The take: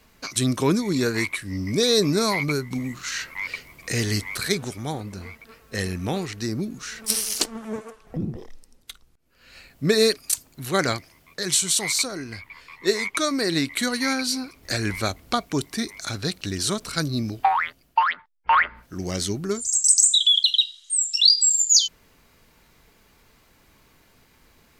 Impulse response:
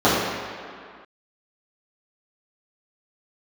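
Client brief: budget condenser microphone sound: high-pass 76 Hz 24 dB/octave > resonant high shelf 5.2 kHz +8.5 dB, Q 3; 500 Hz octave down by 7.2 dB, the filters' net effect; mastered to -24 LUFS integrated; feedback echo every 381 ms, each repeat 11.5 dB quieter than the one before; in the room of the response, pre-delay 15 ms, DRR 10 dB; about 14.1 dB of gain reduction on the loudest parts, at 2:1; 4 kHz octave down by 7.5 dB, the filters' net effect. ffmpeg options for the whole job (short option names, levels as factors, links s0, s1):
-filter_complex "[0:a]equalizer=f=500:t=o:g=-9,equalizer=f=4000:t=o:g=-7.5,acompressor=threshold=0.00891:ratio=2,aecho=1:1:381|762|1143:0.266|0.0718|0.0194,asplit=2[s0][s1];[1:a]atrim=start_sample=2205,adelay=15[s2];[s1][s2]afir=irnorm=-1:irlink=0,volume=0.0178[s3];[s0][s3]amix=inputs=2:normalize=0,highpass=f=76:w=0.5412,highpass=f=76:w=1.3066,highshelf=f=5200:t=q:w=3:g=8.5,volume=1.33"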